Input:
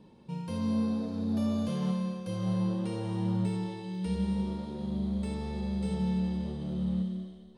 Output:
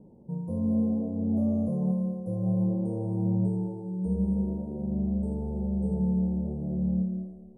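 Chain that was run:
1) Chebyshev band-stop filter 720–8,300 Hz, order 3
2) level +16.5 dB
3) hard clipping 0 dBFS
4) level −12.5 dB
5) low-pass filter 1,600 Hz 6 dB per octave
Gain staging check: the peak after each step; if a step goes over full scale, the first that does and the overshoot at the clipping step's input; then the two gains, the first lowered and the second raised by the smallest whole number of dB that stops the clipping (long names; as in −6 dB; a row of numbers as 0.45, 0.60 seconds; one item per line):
−20.5, −4.0, −4.0, −16.5, −17.0 dBFS
no step passes full scale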